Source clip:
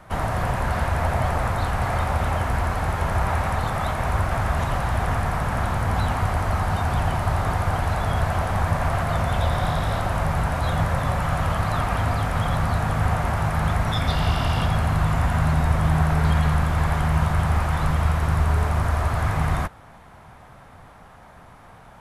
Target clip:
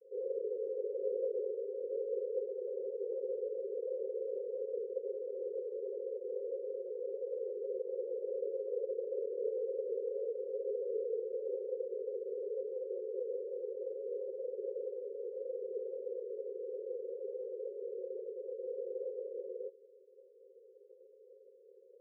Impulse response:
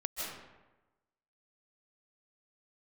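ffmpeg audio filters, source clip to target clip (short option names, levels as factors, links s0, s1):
-af "asuperpass=centerf=550:order=20:qfactor=3.3,afreqshift=-100,volume=0.891"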